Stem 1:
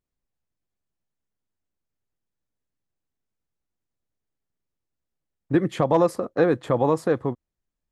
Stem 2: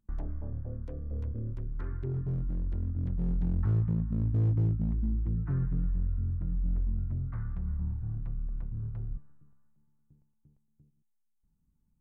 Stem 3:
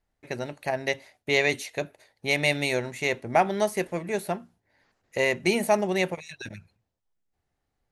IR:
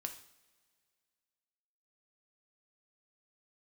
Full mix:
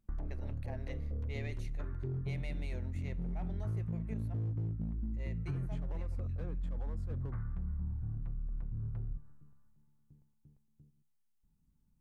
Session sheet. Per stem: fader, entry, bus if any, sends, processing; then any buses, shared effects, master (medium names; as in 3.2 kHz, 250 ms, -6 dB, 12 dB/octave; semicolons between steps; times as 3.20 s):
-11.0 dB, 0.00 s, bus A, send -20 dB, treble shelf 4.6 kHz -5 dB; compression 4:1, threshold -19 dBFS, peak gain reduction 5.5 dB; hard clipper -19 dBFS, distortion -12 dB
-1.5 dB, 0.00 s, no bus, send -9.5 dB, none
-11.5 dB, 0.00 s, bus A, send -19 dB, waveshaping leveller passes 1; treble shelf 3.6 kHz -8 dB; auto duck -15 dB, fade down 1.10 s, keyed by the first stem
bus A: 0.0 dB, slow attack 111 ms; compression 3:1, threshold -45 dBFS, peak gain reduction 12.5 dB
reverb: on, pre-delay 3 ms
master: compression, threshold -34 dBFS, peak gain reduction 10 dB